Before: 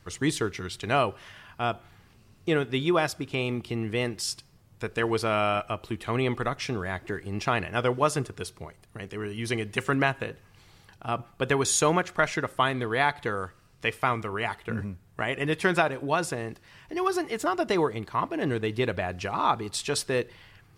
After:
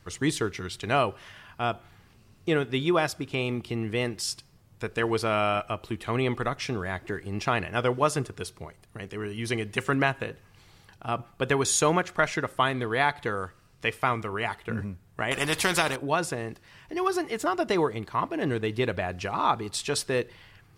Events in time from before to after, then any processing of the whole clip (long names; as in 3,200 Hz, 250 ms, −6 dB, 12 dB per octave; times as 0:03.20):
0:15.31–0:15.96: every bin compressed towards the loudest bin 2 to 1